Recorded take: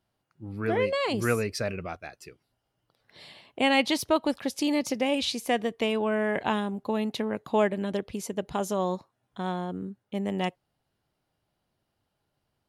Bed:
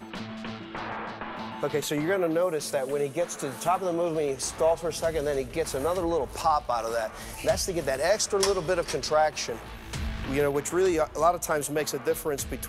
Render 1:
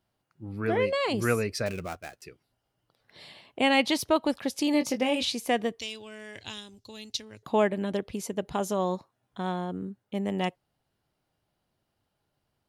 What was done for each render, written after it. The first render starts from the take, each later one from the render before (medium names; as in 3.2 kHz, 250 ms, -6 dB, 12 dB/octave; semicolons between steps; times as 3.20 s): 1.66–2.22 s: dead-time distortion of 0.1 ms; 4.72–5.25 s: doubling 20 ms -7.5 dB; 5.79–7.43 s: FFT filter 110 Hz 0 dB, 170 Hz -22 dB, 280 Hz -14 dB, 770 Hz -22 dB, 1.2 kHz -18 dB, 2.2 kHz -9 dB, 5.7 kHz +13 dB, 10 kHz -3 dB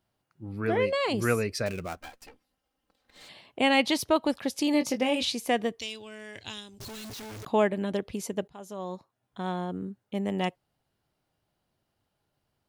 1.96–3.29 s: comb filter that takes the minimum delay 3.8 ms; 6.80–7.45 s: one-bit comparator; 8.48–9.62 s: fade in, from -21.5 dB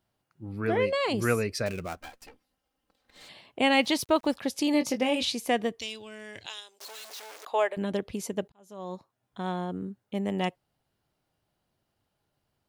3.71–4.35 s: small samples zeroed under -50 dBFS; 6.46–7.77 s: high-pass 490 Hz 24 dB/octave; 8.52–8.94 s: fade in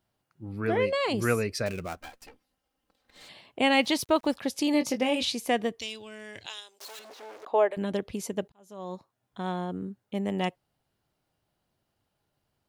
6.99–7.71 s: tilt EQ -4.5 dB/octave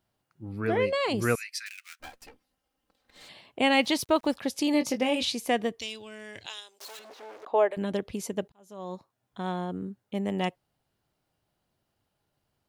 1.35–2.00 s: steep high-pass 1.7 kHz; 6.97–7.57 s: treble shelf 4.4 kHz -5 dB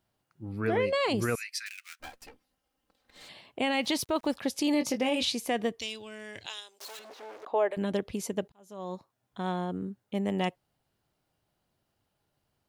peak limiter -18 dBFS, peak gain reduction 7 dB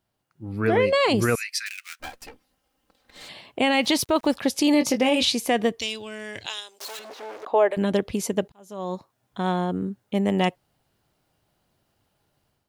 level rider gain up to 7.5 dB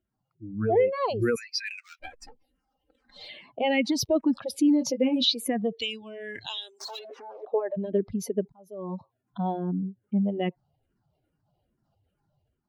spectral contrast enhancement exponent 1.9; barber-pole phaser -2.4 Hz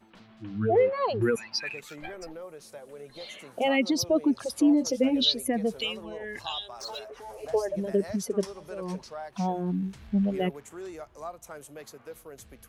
add bed -16.5 dB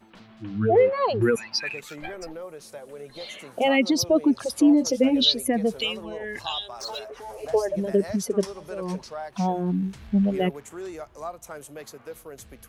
trim +4 dB